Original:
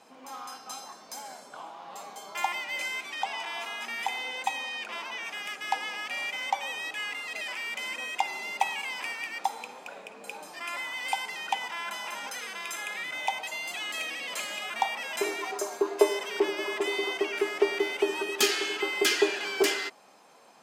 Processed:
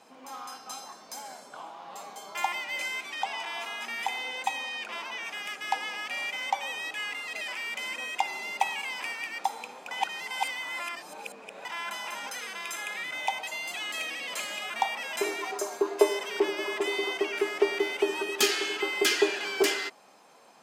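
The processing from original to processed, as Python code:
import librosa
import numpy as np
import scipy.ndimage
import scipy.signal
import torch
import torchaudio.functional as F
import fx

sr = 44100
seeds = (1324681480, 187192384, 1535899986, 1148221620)

y = fx.edit(x, sr, fx.reverse_span(start_s=9.91, length_s=1.74), tone=tone)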